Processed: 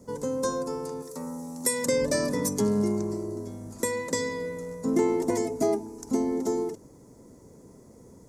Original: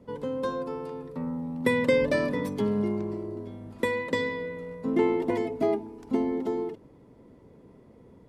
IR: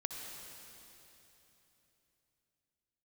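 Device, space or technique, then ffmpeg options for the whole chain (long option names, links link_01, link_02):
over-bright horn tweeter: -filter_complex "[0:a]asettb=1/sr,asplit=3[link_01][link_02][link_03];[link_01]atrim=end=1.024[link_04];[link_02]atrim=start=1.02:end=1.86,asetpts=PTS-STARTPTS,afade=type=in:duration=0.004:curve=qsin,afade=type=out:start_time=0.836:duration=0.004:curve=qsin,bass=frequency=250:gain=-12,treble=frequency=4000:gain=9[link_05];[link_03]atrim=start=1.856[link_06];[link_04][link_05]acrossfade=duration=0.004:curve1=hsin:curve2=qsin[link_07];[link_07][link_06]acrossfade=duration=0.004:curve1=qsin:curve2=hsin,highshelf=frequency=4500:width_type=q:width=3:gain=14,alimiter=limit=-15.5dB:level=0:latency=1:release=341,volume=2dB"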